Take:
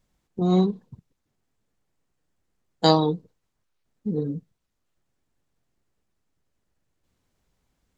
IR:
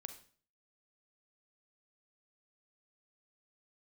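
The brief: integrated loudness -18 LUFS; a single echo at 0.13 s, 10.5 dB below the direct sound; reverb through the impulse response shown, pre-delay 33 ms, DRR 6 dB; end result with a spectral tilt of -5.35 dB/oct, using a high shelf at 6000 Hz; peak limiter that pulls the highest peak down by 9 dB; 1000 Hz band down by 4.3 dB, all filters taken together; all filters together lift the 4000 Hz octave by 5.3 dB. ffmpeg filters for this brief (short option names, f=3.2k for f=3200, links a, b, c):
-filter_complex "[0:a]equalizer=f=1k:t=o:g=-6,equalizer=f=4k:t=o:g=3.5,highshelf=f=6k:g=7.5,alimiter=limit=-11.5dB:level=0:latency=1,aecho=1:1:130:0.299,asplit=2[a][b];[1:a]atrim=start_sample=2205,adelay=33[c];[b][c]afir=irnorm=-1:irlink=0,volume=-1.5dB[d];[a][d]amix=inputs=2:normalize=0,volume=6dB"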